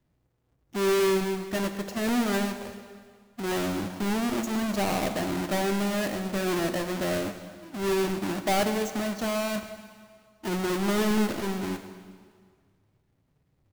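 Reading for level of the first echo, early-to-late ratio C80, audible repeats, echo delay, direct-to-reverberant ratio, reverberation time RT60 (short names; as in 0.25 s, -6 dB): -18.5 dB, 10.0 dB, 1, 0.127 s, 7.5 dB, 1.9 s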